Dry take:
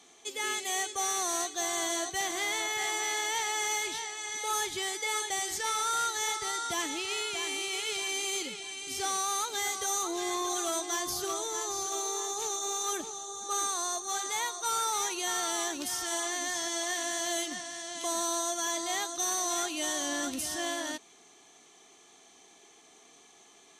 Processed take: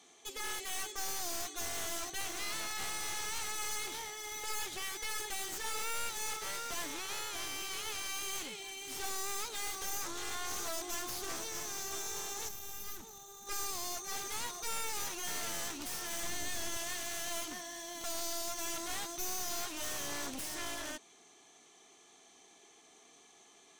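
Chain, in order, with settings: one-sided fold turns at -37.5 dBFS; 12.49–13.47 spectral gain 240–11000 Hz -8 dB; 16.23–16.77 low shelf 320 Hz +8 dB; gain -3.5 dB

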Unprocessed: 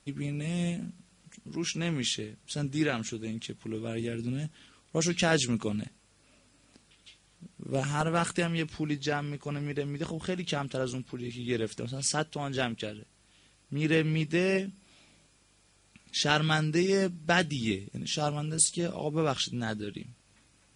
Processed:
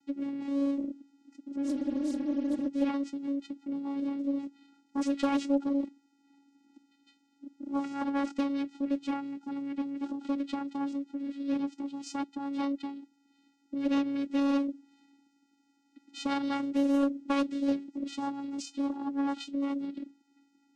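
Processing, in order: vocoder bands 8, square 279 Hz; spectral repair 1.68–2.65, 240–5000 Hz before; Doppler distortion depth 0.54 ms

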